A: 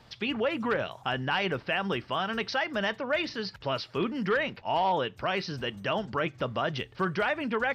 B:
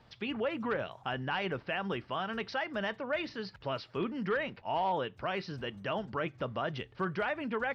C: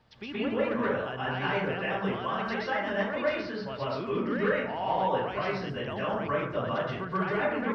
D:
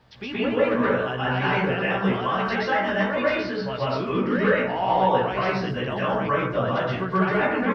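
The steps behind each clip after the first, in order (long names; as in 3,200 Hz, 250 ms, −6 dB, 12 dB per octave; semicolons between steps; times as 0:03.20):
low-pass filter 2,900 Hz 6 dB per octave; level −4.5 dB
dense smooth reverb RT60 0.79 s, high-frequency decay 0.4×, pre-delay 110 ms, DRR −8 dB; level −4 dB
double-tracking delay 16 ms −4 dB; level +5.5 dB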